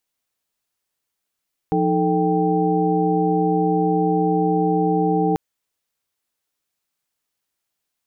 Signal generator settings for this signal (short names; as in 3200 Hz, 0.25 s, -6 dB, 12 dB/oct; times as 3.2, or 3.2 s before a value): chord F3/D#4/A4/G5 sine, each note -21.5 dBFS 3.64 s